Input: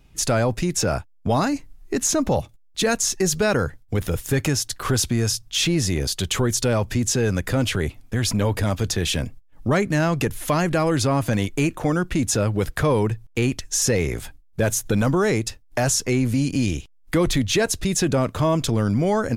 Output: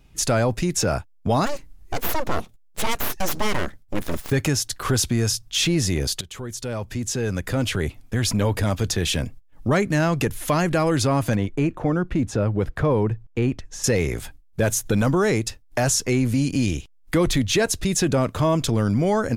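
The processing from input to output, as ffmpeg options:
-filter_complex "[0:a]asplit=3[a][b][c];[a]afade=t=out:st=1.45:d=0.02[d];[b]aeval=exprs='abs(val(0))':c=same,afade=t=in:st=1.45:d=0.02,afade=t=out:st=4.3:d=0.02[e];[c]afade=t=in:st=4.3:d=0.02[f];[d][e][f]amix=inputs=3:normalize=0,asettb=1/sr,asplit=3[g][h][i];[g]atrim=end=11.354[j];[h]atrim=start=11.35:end=13.84,asetpts=PTS-STARTPTS,afade=t=in:d=0.004:c=qsin,afade=t=out:st=2.486:d=0.004:c=qsin,lowpass=f=1.2k:p=1[k];[i]atrim=start=13.836[l];[j][k]acrossfade=d=0.004:c1=hsin:c2=qsin[m];[m][l]acrossfade=d=0.004:c1=qsin:c2=hsin,asplit=2[n][o];[n]atrim=end=6.21,asetpts=PTS-STARTPTS,afade=t=out:st=6.206:d=0.004:c=hsin:silence=0.141254[p];[o]atrim=start=6.21,asetpts=PTS-STARTPTS,afade=t=in:d=1.78:silence=0.141254[q];[p][q]concat=n=2:v=0:a=1"

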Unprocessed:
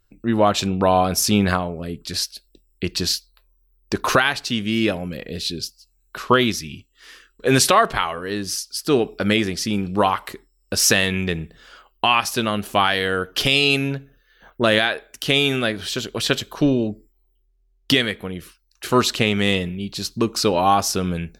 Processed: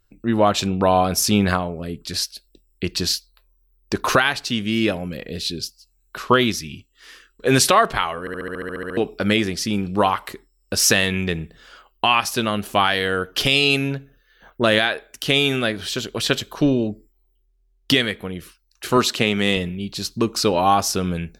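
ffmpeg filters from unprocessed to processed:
-filter_complex "[0:a]asettb=1/sr,asplit=3[a][b][c];[a]atrim=end=18.974[d];[b]atrim=start=18.97:end=19.57,asetpts=PTS-STARTPTS,afade=t=in:d=0.004:c=qsin,afade=t=out:st=0.596:d=0.004:c=qsin,highpass=120[e];[c]atrim=start=19.566[f];[d][e]acrossfade=d=0.004:c1=hsin:c2=qsin[g];[g][f]acrossfade=d=0.004:c1=qsin:c2=hsin,asplit=12[h][i][j][k][l][m][n][o][p][q][r][s];[h]atrim=end=8.272[t];[i]atrim=start=8.198:end=8.272[u];[j]atrim=start=8.198:end=8.272[v];[k]atrim=start=8.198:end=8.272[w];[l]atrim=start=8.198:end=8.272[x];[m]atrim=start=8.198:end=8.272[y];[n]atrim=start=8.198:end=8.272[z];[o]atrim=start=8.198:end=8.272[aa];[p]atrim=start=8.198:end=8.272[ab];[q]atrim=start=8.198:end=8.272[ac];[r]atrim=start=8.198:end=8.272[ad];[s]atrim=start=8.968[ae];[t][u]acrossfade=d=0.004:c1=hsin:c2=hsin[af];[af][v]acrossfade=d=0.004:c1=hsin:c2=hsin[ag];[ag][w]acrossfade=d=0.004:c1=hsin:c2=hsin[ah];[ah][x]acrossfade=d=0.004:c1=hsin:c2=hsin[ai];[ai][y]acrossfade=d=0.004:c1=hsin:c2=hsin[aj];[aj][z]acrossfade=d=0.004:c1=hsin:c2=hsin[ak];[ak][aa]acrossfade=d=0.004:c1=hsin:c2=hsin[al];[al][ab]acrossfade=d=0.004:c1=hsin:c2=hsin[am];[am][ac]acrossfade=d=0.004:c1=hsin:c2=hsin[an];[an][ad]acrossfade=d=0.004:c1=hsin:c2=hsin[ao];[ao][ae]acrossfade=d=0.004:c1=hsin:c2=hsin"

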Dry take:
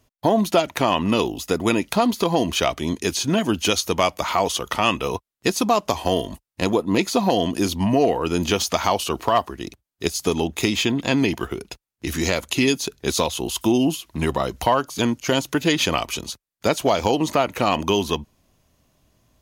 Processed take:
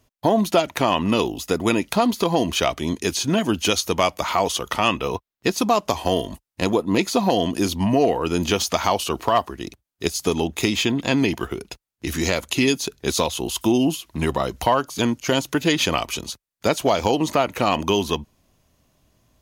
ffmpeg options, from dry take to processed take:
-filter_complex "[0:a]asettb=1/sr,asplit=3[a][b][c];[a]atrim=end=4.884[d];[b]atrim=start=4.88:end=5.58,asetpts=PTS-STARTPTS,afade=t=in:d=0.004:c=qsin,afade=t=out:st=0.696:d=0.004:c=qsin,equalizer=f=9.2k:t=o:w=1.1:g=-7.5[e];[c]atrim=start=5.576[f];[d][e]acrossfade=d=0.004:c1=hsin:c2=qsin[g];[g][f]acrossfade=d=0.004:c1=qsin:c2=hsin"

